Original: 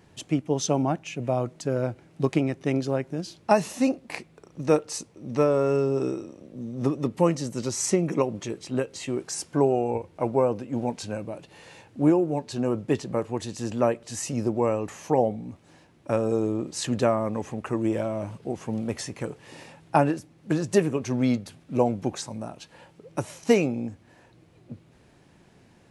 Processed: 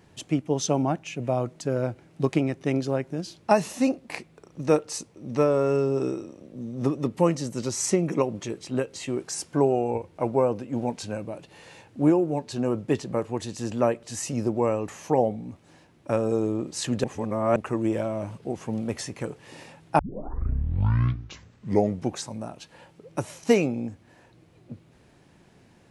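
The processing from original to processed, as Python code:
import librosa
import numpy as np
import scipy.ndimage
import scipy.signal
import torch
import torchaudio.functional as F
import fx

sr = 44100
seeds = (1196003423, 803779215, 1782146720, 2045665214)

y = fx.edit(x, sr, fx.reverse_span(start_s=17.04, length_s=0.52),
    fx.tape_start(start_s=19.99, length_s=2.14), tone=tone)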